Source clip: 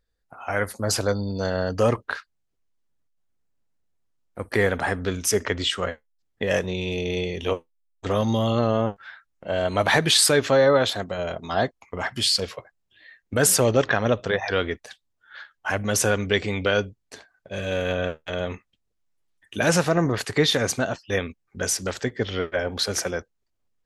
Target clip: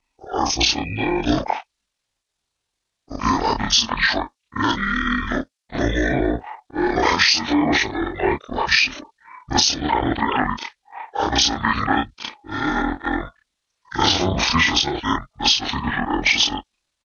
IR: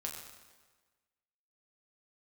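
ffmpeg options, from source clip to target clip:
-af "afftfilt=real='re':imag='-im':win_size=4096:overlap=0.75,highpass=frequency=100:poles=1,asetrate=24046,aresample=44100,atempo=1.83401,adynamicequalizer=threshold=0.00447:dfrequency=4700:dqfactor=0.95:tfrequency=4700:tqfactor=0.95:attack=5:release=100:ratio=0.375:range=3:mode=boostabove:tftype=bell,crystalizer=i=2.5:c=0,lowpass=6400,equalizer=frequency=150:width_type=o:width=2.8:gain=-10,atempo=1.4,acompressor=threshold=-28dB:ratio=16,alimiter=level_in=18dB:limit=-1dB:release=50:level=0:latency=1,volume=-3dB"

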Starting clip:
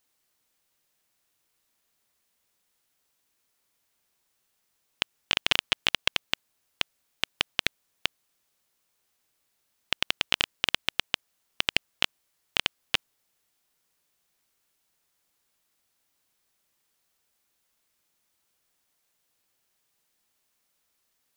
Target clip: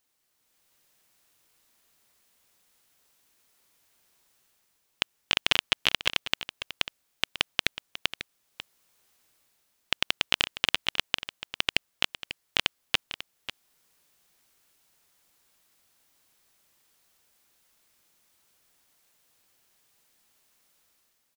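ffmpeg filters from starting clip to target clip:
ffmpeg -i in.wav -filter_complex "[0:a]dynaudnorm=framelen=150:gausssize=7:maxgain=8dB,asplit=2[link_01][link_02];[link_02]aecho=0:1:544:0.224[link_03];[link_01][link_03]amix=inputs=2:normalize=0,volume=-1dB" out.wav

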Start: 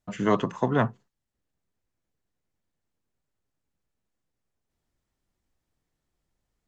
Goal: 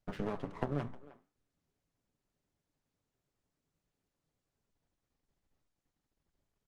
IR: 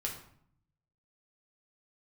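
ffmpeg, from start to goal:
-filter_complex "[0:a]lowpass=frequency=5500:width=0.5412,lowpass=frequency=5500:width=1.3066,tiltshelf=frequency=1500:gain=4,aecho=1:1:7.1:0.38,adynamicequalizer=threshold=0.0178:dfrequency=350:dqfactor=6.1:tfrequency=350:tqfactor=6.1:attack=5:release=100:ratio=0.375:range=2:mode=cutabove:tftype=bell,acompressor=threshold=-26dB:ratio=12,aeval=exprs='max(val(0),0)':channel_layout=same,flanger=delay=10:depth=4.3:regen=82:speed=2:shape=triangular,asplit=2[link_01][link_02];[link_02]adelay=310,highpass=300,lowpass=3400,asoftclip=type=hard:threshold=-31dB,volume=-16dB[link_03];[link_01][link_03]amix=inputs=2:normalize=0,volume=2.5dB" -ar 48000 -c:a libopus -b:a 24k

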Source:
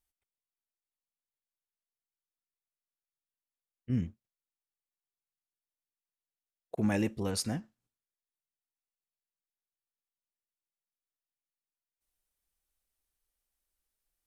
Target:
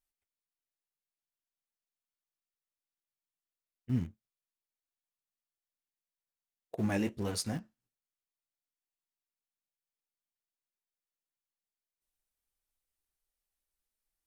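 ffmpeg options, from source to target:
ffmpeg -i in.wav -filter_complex "[0:a]flanger=delay=7.3:depth=6.9:regen=-46:speed=1.5:shape=triangular,asplit=2[link_01][link_02];[link_02]aeval=exprs='val(0)*gte(abs(val(0)),0.0141)':channel_layout=same,volume=-9.5dB[link_03];[link_01][link_03]amix=inputs=2:normalize=0" out.wav

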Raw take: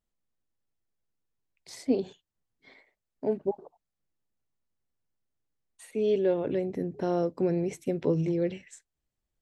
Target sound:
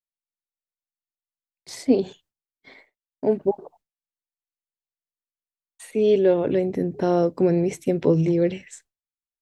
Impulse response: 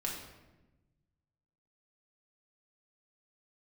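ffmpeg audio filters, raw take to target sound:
-af "agate=range=-33dB:threshold=-57dB:ratio=3:detection=peak,volume=7.5dB"

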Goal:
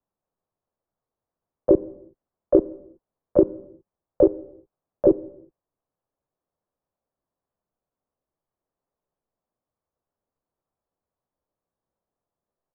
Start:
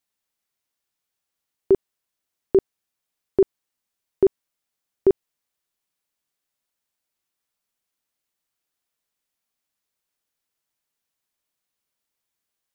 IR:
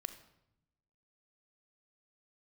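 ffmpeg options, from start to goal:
-filter_complex "[0:a]lowpass=frequency=1000:width=0.5412,lowpass=frequency=1000:width=1.3066,asplit=4[link_01][link_02][link_03][link_04];[link_02]asetrate=37084,aresample=44100,atempo=1.18921,volume=-1dB[link_05];[link_03]asetrate=58866,aresample=44100,atempo=0.749154,volume=-10dB[link_06];[link_04]asetrate=66075,aresample=44100,atempo=0.66742,volume=-9dB[link_07];[link_01][link_05][link_06][link_07]amix=inputs=4:normalize=0,acrossover=split=100|570[link_08][link_09][link_10];[link_08]acompressor=threshold=-38dB:ratio=4[link_11];[link_09]acompressor=threshold=-17dB:ratio=4[link_12];[link_10]acompressor=threshold=-28dB:ratio=4[link_13];[link_11][link_12][link_13]amix=inputs=3:normalize=0,asplit=2[link_14][link_15];[1:a]atrim=start_sample=2205,afade=type=out:start_time=0.4:duration=0.01,atrim=end_sample=18081,asetrate=40131,aresample=44100[link_16];[link_15][link_16]afir=irnorm=-1:irlink=0,volume=-3.5dB[link_17];[link_14][link_17]amix=inputs=2:normalize=0"

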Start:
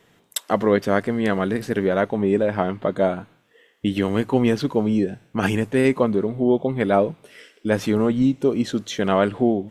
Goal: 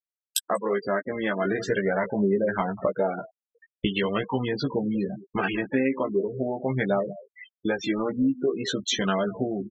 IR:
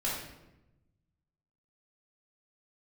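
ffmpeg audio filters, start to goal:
-filter_complex "[0:a]agate=range=-6dB:threshold=-43dB:ratio=16:detection=peak,lowshelf=frequency=450:gain=-11,aphaser=in_gain=1:out_gain=1:delay=3.8:decay=0.42:speed=0.43:type=triangular,asettb=1/sr,asplit=3[link_01][link_02][link_03];[link_01]atrim=end=1.454[link_04];[link_02]atrim=start=1.45:end=4.25,asetpts=PTS-STARTPTS,afade=type=in:duration=0.004:curve=qsin,afade=type=out:start_time=2.796:duration=0.004:curve=qsin,acontrast=64[link_05];[link_03]atrim=start=4.246[link_06];[link_04][link_05]acrossfade=duration=0.004:curve1=hsin:curve2=qsin[link_07];[link_07][link_06]acrossfade=duration=0.004:curve1=qsin:curve2=hsin,equalizer=frequency=180:width=5.7:gain=4.5,acompressor=threshold=-33dB:ratio=6,aecho=1:1:188:0.178,afftfilt=real='re*gte(hypot(re,im),0.0158)':imag='im*gte(hypot(re,im),0.0158)':win_size=1024:overlap=0.75,asplit=2[link_08][link_09];[link_09]adelay=15,volume=-4dB[link_10];[link_08][link_10]amix=inputs=2:normalize=0,volume=8.5dB"

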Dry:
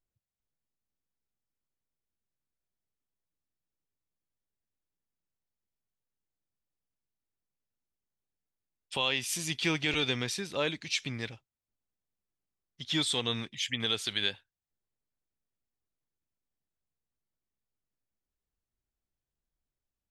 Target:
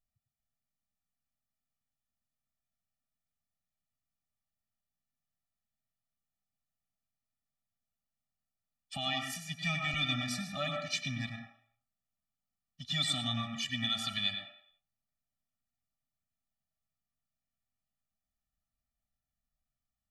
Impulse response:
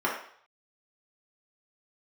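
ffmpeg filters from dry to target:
-filter_complex "[0:a]asplit=3[link_01][link_02][link_03];[link_01]afade=type=out:start_time=9.05:duration=0.02[link_04];[link_02]agate=range=-33dB:threshold=-28dB:ratio=3:detection=peak,afade=type=in:start_time=9.05:duration=0.02,afade=type=out:start_time=10.16:duration=0.02[link_05];[link_03]afade=type=in:start_time=10.16:duration=0.02[link_06];[link_04][link_05][link_06]amix=inputs=3:normalize=0,asplit=2[link_07][link_08];[1:a]atrim=start_sample=2205,adelay=98[link_09];[link_08][link_09]afir=irnorm=-1:irlink=0,volume=-14dB[link_10];[link_07][link_10]amix=inputs=2:normalize=0,afftfilt=real='re*eq(mod(floor(b*sr/1024/280),2),0)':imag='im*eq(mod(floor(b*sr/1024/280),2),0)':win_size=1024:overlap=0.75"

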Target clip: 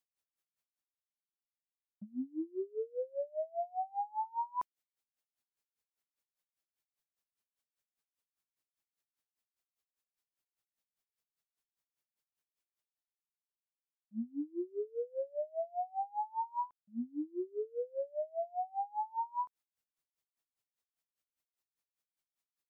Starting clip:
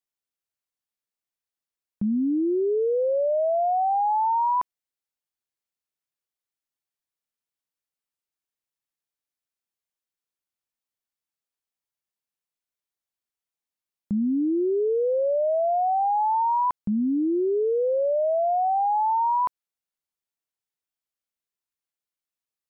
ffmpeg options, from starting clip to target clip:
ffmpeg -i in.wav -af "agate=range=-33dB:threshold=-19dB:ratio=3:detection=peak,areverse,acompressor=mode=upward:threshold=-50dB:ratio=2.5,areverse,aeval=exprs='val(0)*pow(10,-28*(0.5-0.5*cos(2*PI*5*n/s))/20)':channel_layout=same,volume=-5.5dB" out.wav

